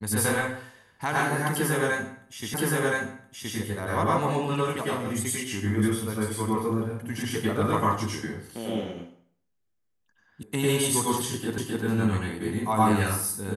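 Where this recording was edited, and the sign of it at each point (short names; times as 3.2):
2.54 repeat of the last 1.02 s
10.43 sound cut off
11.58 repeat of the last 0.26 s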